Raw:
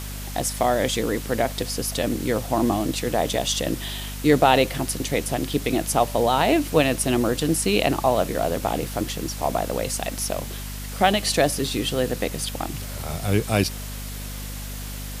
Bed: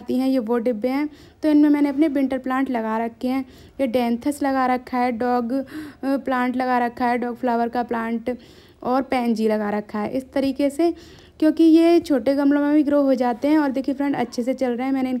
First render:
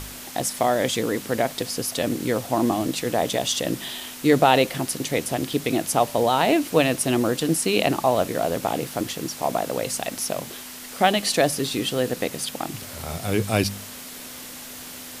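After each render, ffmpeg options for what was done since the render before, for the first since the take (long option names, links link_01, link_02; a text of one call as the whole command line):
ffmpeg -i in.wav -af "bandreject=frequency=50:width_type=h:width=4,bandreject=frequency=100:width_type=h:width=4,bandreject=frequency=150:width_type=h:width=4,bandreject=frequency=200:width_type=h:width=4" out.wav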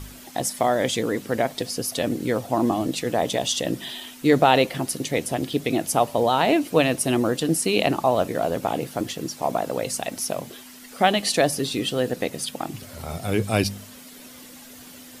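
ffmpeg -i in.wav -af "afftdn=noise_reduction=9:noise_floor=-39" out.wav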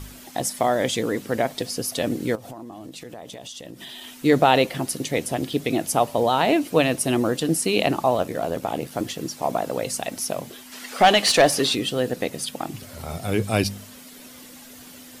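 ffmpeg -i in.wav -filter_complex "[0:a]asettb=1/sr,asplit=3[link_01][link_02][link_03];[link_01]atrim=end=2.354[link_04];[link_02]atrim=start=2.35:end=4.23,asetpts=PTS-STARTPTS,afade=type=in:duration=0.004:curve=qsin,afade=type=out:start_time=1.876:duration=0.004:curve=qsin,acompressor=threshold=-34dB:ratio=12:attack=3.2:release=140:knee=1:detection=peak[link_05];[link_03]atrim=start=4.226[link_06];[link_04][link_05]acrossfade=duration=0.004:curve1=hsin:curve2=qsin[link_07];[link_07][link_06]acrossfade=duration=0.004:curve1=qsin:curve2=hsin,asplit=3[link_08][link_09][link_10];[link_08]afade=type=out:start_time=8.16:duration=0.02[link_11];[link_09]tremolo=f=78:d=0.462,afade=type=in:start_time=8.16:duration=0.02,afade=type=out:start_time=8.91:duration=0.02[link_12];[link_10]afade=type=in:start_time=8.91:duration=0.02[link_13];[link_11][link_12][link_13]amix=inputs=3:normalize=0,asplit=3[link_14][link_15][link_16];[link_14]afade=type=out:start_time=10.71:duration=0.02[link_17];[link_15]asplit=2[link_18][link_19];[link_19]highpass=frequency=720:poles=1,volume=16dB,asoftclip=type=tanh:threshold=-5dB[link_20];[link_18][link_20]amix=inputs=2:normalize=0,lowpass=frequency=4300:poles=1,volume=-6dB,afade=type=in:start_time=10.71:duration=0.02,afade=type=out:start_time=11.74:duration=0.02[link_21];[link_16]afade=type=in:start_time=11.74:duration=0.02[link_22];[link_17][link_21][link_22]amix=inputs=3:normalize=0" out.wav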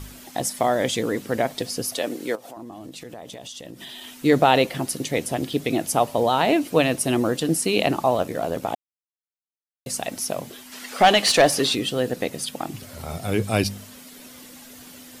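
ffmpeg -i in.wav -filter_complex "[0:a]asettb=1/sr,asplit=3[link_01][link_02][link_03];[link_01]atrim=end=1.954[link_04];[link_02]atrim=start=1.95:end=2.57,asetpts=PTS-STARTPTS,afade=type=in:duration=0.004:curve=qsin,afade=type=out:start_time=0.616:duration=0.004:curve=qsin,highpass=340[link_05];[link_03]atrim=start=2.566[link_06];[link_04][link_05]acrossfade=duration=0.004:curve1=hsin:curve2=qsin[link_07];[link_07][link_06]acrossfade=duration=0.004:curve1=qsin:curve2=hsin,asplit=3[link_08][link_09][link_10];[link_08]atrim=end=8.75,asetpts=PTS-STARTPTS,afade=type=out:start_time=8.746:duration=0.004:curve=hsin[link_11];[link_09]atrim=start=8.75:end=9.86,asetpts=PTS-STARTPTS,volume=0[link_12];[link_10]atrim=start=9.86,asetpts=PTS-STARTPTS,afade=type=in:duration=0.004:curve=hsin[link_13];[link_11][link_12][link_13]concat=n=3:v=0:a=1" out.wav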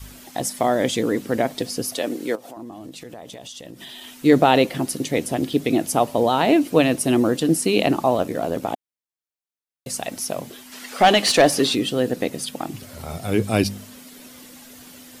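ffmpeg -i in.wav -af "adynamicequalizer=threshold=0.0282:dfrequency=280:dqfactor=1.1:tfrequency=280:tqfactor=1.1:attack=5:release=100:ratio=0.375:range=2.5:mode=boostabove:tftype=bell" out.wav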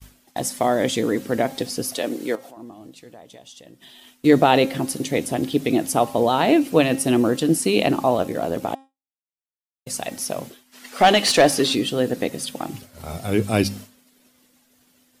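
ffmpeg -i in.wav -af "bandreject=frequency=268.4:width_type=h:width=4,bandreject=frequency=536.8:width_type=h:width=4,bandreject=frequency=805.2:width_type=h:width=4,bandreject=frequency=1073.6:width_type=h:width=4,bandreject=frequency=1342:width_type=h:width=4,bandreject=frequency=1610.4:width_type=h:width=4,bandreject=frequency=1878.8:width_type=h:width=4,bandreject=frequency=2147.2:width_type=h:width=4,bandreject=frequency=2415.6:width_type=h:width=4,bandreject=frequency=2684:width_type=h:width=4,bandreject=frequency=2952.4:width_type=h:width=4,bandreject=frequency=3220.8:width_type=h:width=4,bandreject=frequency=3489.2:width_type=h:width=4,bandreject=frequency=3757.6:width_type=h:width=4,bandreject=frequency=4026:width_type=h:width=4,bandreject=frequency=4294.4:width_type=h:width=4,bandreject=frequency=4562.8:width_type=h:width=4,bandreject=frequency=4831.2:width_type=h:width=4,bandreject=frequency=5099.6:width_type=h:width=4,bandreject=frequency=5368:width_type=h:width=4,bandreject=frequency=5636.4:width_type=h:width=4,bandreject=frequency=5904.8:width_type=h:width=4,bandreject=frequency=6173.2:width_type=h:width=4,bandreject=frequency=6441.6:width_type=h:width=4,bandreject=frequency=6710:width_type=h:width=4,bandreject=frequency=6978.4:width_type=h:width=4,bandreject=frequency=7246.8:width_type=h:width=4,bandreject=frequency=7515.2:width_type=h:width=4,bandreject=frequency=7783.6:width_type=h:width=4,bandreject=frequency=8052:width_type=h:width=4,bandreject=frequency=8320.4:width_type=h:width=4,bandreject=frequency=8588.8:width_type=h:width=4,bandreject=frequency=8857.2:width_type=h:width=4,bandreject=frequency=9125.6:width_type=h:width=4,bandreject=frequency=9394:width_type=h:width=4,bandreject=frequency=9662.4:width_type=h:width=4,bandreject=frequency=9930.8:width_type=h:width=4,bandreject=frequency=10199.2:width_type=h:width=4,bandreject=frequency=10467.6:width_type=h:width=4,agate=range=-33dB:threshold=-32dB:ratio=3:detection=peak" out.wav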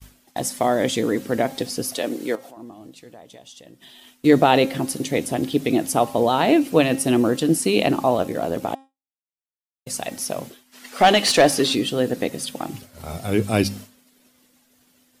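ffmpeg -i in.wav -af anull out.wav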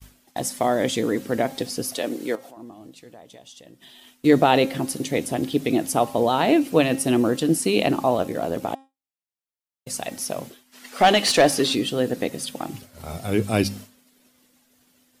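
ffmpeg -i in.wav -af "volume=-1.5dB" out.wav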